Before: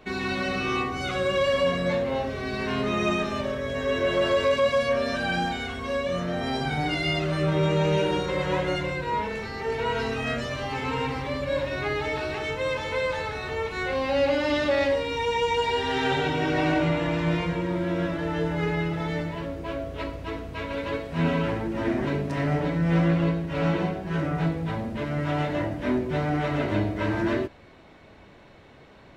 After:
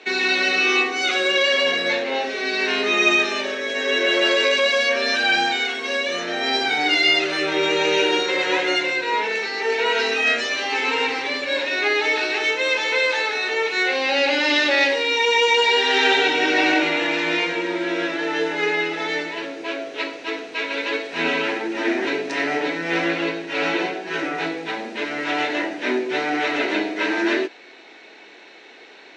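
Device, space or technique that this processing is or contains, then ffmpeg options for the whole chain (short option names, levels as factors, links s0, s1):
phone speaker on a table: -filter_complex "[0:a]highpass=f=340:w=0.5412,highpass=f=340:w=1.3066,equalizer=f=580:t=q:w=4:g=-9,equalizer=f=1100:t=q:w=4:g=-9,equalizer=f=1800:t=q:w=4:g=3,equalizer=f=2500:t=q:w=4:g=6,equalizer=f=4000:t=q:w=4:g=6,equalizer=f=6000:t=q:w=4:g=5,lowpass=f=7900:w=0.5412,lowpass=f=7900:w=1.3066,asettb=1/sr,asplit=3[s0][s1][s2];[s0]atrim=end=1.324[s3];[s1]atrim=start=1.32:end=2.21,asetpts=PTS-STARTPTS,afade=t=in:d=0.004:c=qsin,afade=t=out:st=0.886:d=0.004:c=qsin,lowpass=7800[s4];[s2]atrim=start=2.206[s5];[s3][s4]acrossfade=d=0.004:c1=hsin:c2=qsin[s6];[s6][s5]acrossfade=d=0.004:c1=qsin:c2=hsin,volume=2.66"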